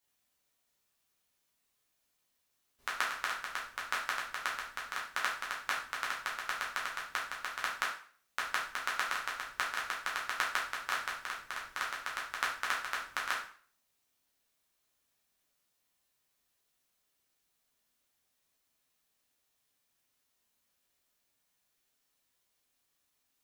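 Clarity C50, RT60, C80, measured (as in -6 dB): 5.0 dB, 0.45 s, 10.5 dB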